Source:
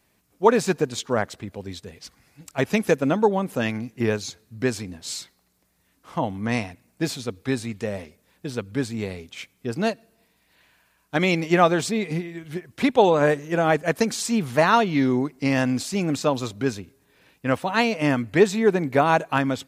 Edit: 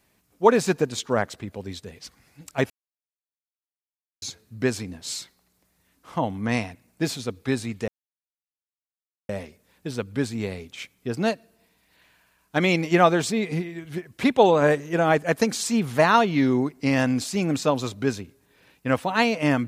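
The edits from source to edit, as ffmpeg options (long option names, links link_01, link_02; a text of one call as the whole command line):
ffmpeg -i in.wav -filter_complex "[0:a]asplit=4[link_01][link_02][link_03][link_04];[link_01]atrim=end=2.7,asetpts=PTS-STARTPTS,afade=type=out:start_time=2.696:duration=0.004:curve=hsin[link_05];[link_02]atrim=start=2.7:end=4.22,asetpts=PTS-STARTPTS,volume=0[link_06];[link_03]atrim=start=4.22:end=7.88,asetpts=PTS-STARTPTS,afade=type=in:duration=0.004:curve=hsin,afade=type=out:start_time=3.656:duration=0.004:curve=hsin,apad=pad_dur=1.41[link_07];[link_04]atrim=start=7.88,asetpts=PTS-STARTPTS,afade=type=in:duration=0.004:curve=hsin[link_08];[link_05][link_06][link_07][link_08]concat=n=4:v=0:a=1" out.wav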